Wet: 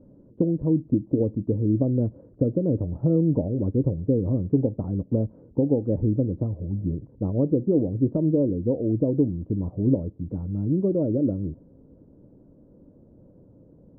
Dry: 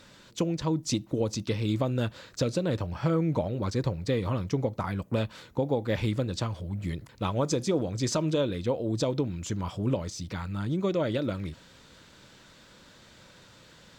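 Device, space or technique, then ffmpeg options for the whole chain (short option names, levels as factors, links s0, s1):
under water: -af "lowpass=f=520:w=0.5412,lowpass=f=520:w=1.3066,equalizer=f=280:t=o:w=0.28:g=6.5,volume=1.78"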